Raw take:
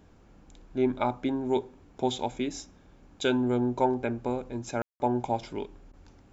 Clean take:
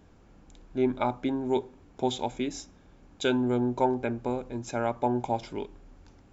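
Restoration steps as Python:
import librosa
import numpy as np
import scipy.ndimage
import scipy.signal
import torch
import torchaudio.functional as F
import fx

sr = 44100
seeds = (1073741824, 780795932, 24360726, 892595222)

y = fx.fix_ambience(x, sr, seeds[0], print_start_s=0.0, print_end_s=0.5, start_s=4.82, end_s=5.0)
y = fx.fix_interpolate(y, sr, at_s=(5.92,), length_ms=13.0)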